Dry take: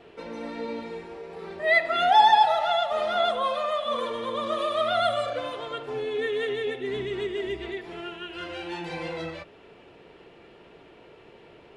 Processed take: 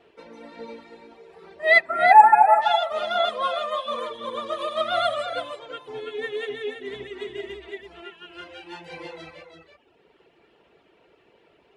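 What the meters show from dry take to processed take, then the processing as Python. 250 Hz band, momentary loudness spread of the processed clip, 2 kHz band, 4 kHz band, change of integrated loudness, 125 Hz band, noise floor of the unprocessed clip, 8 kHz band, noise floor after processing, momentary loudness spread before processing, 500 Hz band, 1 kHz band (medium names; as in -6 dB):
-6.0 dB, 24 LU, +4.5 dB, -1.0 dB, +5.5 dB, -8.0 dB, -52 dBFS, no reading, -61 dBFS, 17 LU, 0.0 dB, +4.5 dB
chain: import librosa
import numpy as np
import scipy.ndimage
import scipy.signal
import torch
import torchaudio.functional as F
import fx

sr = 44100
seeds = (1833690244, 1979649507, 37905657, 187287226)

y = fx.spec_erase(x, sr, start_s=1.82, length_s=0.8, low_hz=2600.0, high_hz=7400.0)
y = fx.low_shelf(y, sr, hz=150.0, db=-10.0)
y = fx.dereverb_blind(y, sr, rt60_s=1.3)
y = fx.peak_eq(y, sr, hz=63.0, db=7.0, octaves=0.68)
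y = y + 10.0 ** (-5.5 / 20.0) * np.pad(y, (int(332 * sr / 1000.0), 0))[:len(y)]
y = fx.upward_expand(y, sr, threshold_db=-40.0, expansion=1.5)
y = y * 10.0 ** (8.0 / 20.0)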